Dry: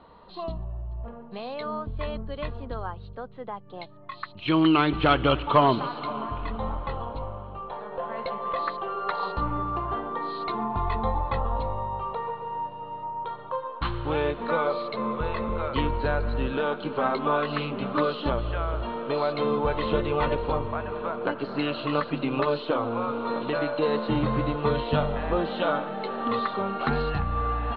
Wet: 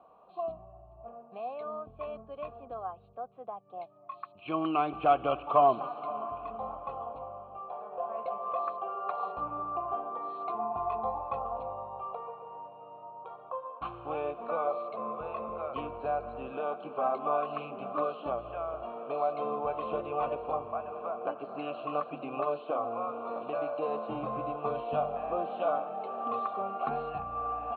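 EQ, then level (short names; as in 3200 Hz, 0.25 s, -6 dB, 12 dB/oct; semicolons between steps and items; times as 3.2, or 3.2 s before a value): vowel filter a; air absorption 190 m; low shelf 340 Hz +10.5 dB; +3.0 dB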